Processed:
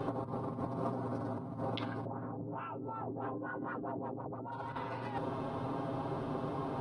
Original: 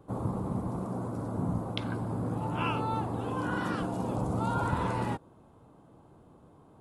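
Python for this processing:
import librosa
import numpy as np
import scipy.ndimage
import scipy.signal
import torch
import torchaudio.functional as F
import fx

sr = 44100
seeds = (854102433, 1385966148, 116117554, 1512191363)

y = scipy.signal.savgol_filter(x, 15, 4, mode='constant')
y = y + 0.98 * np.pad(y, (int(7.5 * sr / 1000.0), 0))[:len(y)]
y = fx.filter_lfo_lowpass(y, sr, shape='sine', hz=fx.line((2.04, 1.9), (4.51, 8.0)), low_hz=330.0, high_hz=1700.0, q=2.0, at=(2.04, 4.51), fade=0.02)
y = fx.over_compress(y, sr, threshold_db=-42.0, ratio=-1.0)
y = fx.low_shelf(y, sr, hz=170.0, db=-10.0)
y = y * 10.0 ** (6.0 / 20.0)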